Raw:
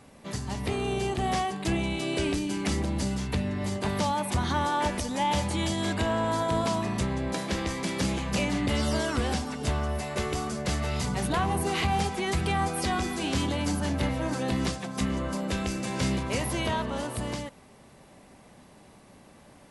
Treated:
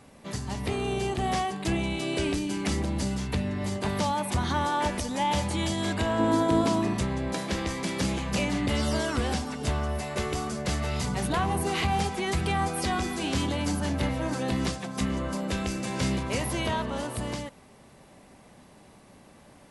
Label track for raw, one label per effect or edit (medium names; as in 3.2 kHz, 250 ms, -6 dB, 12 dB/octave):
6.180000	6.930000	peaking EQ 310 Hz +14.5 dB -> +8.5 dB 0.72 oct